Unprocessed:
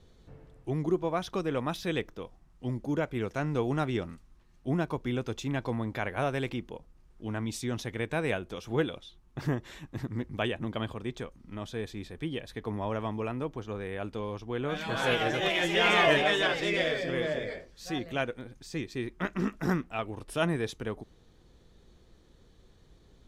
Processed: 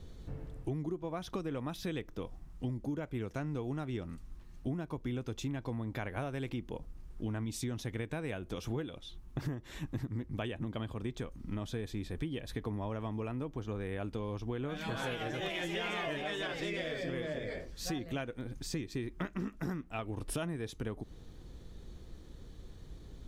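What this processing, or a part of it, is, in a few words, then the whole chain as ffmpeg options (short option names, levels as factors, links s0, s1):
ASMR close-microphone chain: -af "lowshelf=f=190:g=8,equalizer=f=290:t=o:w=0.28:g=3.5,acompressor=threshold=0.0141:ratio=10,highshelf=f=9600:g=6,volume=1.41"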